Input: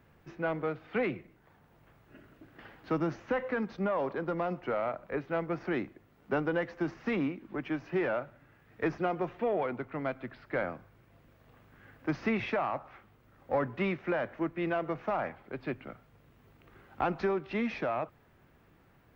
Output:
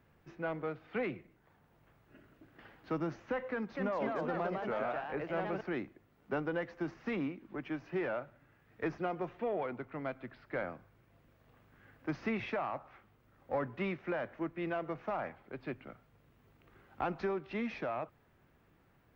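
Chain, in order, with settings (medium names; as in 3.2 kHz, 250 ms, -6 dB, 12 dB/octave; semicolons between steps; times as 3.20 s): 3.50–5.61 s: ever faster or slower copies 251 ms, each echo +2 st, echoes 2; trim -5 dB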